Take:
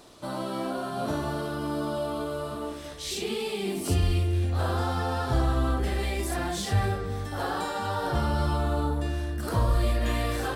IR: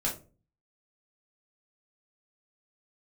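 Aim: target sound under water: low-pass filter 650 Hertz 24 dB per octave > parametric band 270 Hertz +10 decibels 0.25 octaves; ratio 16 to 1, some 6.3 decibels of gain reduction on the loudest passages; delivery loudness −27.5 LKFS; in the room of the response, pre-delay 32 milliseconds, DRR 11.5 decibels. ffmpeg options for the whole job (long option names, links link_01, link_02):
-filter_complex "[0:a]acompressor=threshold=-25dB:ratio=16,asplit=2[link_01][link_02];[1:a]atrim=start_sample=2205,adelay=32[link_03];[link_02][link_03]afir=irnorm=-1:irlink=0,volume=-17.5dB[link_04];[link_01][link_04]amix=inputs=2:normalize=0,lowpass=frequency=650:width=0.5412,lowpass=frequency=650:width=1.3066,equalizer=frequency=270:width_type=o:width=0.25:gain=10,volume=3.5dB"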